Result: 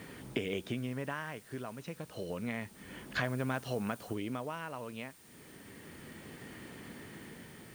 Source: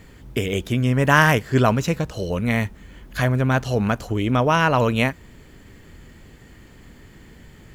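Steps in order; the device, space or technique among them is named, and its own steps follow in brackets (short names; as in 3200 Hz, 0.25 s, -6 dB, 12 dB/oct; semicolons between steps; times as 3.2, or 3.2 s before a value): medium wave at night (BPF 160–4100 Hz; compressor 6:1, threshold -33 dBFS, peak gain reduction 21.5 dB; tremolo 0.3 Hz, depth 62%; whine 9000 Hz -66 dBFS; white noise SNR 21 dB); 3.23–4.13 high shelf 5000 Hz -> 7800 Hz +6 dB; gain +1.5 dB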